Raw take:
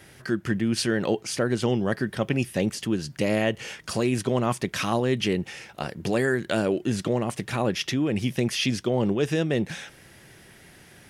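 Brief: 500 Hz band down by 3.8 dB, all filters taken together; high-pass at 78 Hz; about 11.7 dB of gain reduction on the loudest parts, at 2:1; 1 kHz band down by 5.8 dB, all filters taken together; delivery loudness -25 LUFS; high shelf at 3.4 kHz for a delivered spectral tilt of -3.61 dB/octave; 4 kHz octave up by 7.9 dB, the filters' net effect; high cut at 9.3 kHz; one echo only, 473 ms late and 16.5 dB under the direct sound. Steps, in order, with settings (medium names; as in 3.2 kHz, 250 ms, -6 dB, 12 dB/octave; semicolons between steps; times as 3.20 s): high-pass 78 Hz; low-pass 9.3 kHz; peaking EQ 500 Hz -3.5 dB; peaking EQ 1 kHz -8 dB; treble shelf 3.4 kHz +8.5 dB; peaking EQ 4 kHz +5 dB; compression 2:1, threshold -38 dBFS; delay 473 ms -16.5 dB; trim +9.5 dB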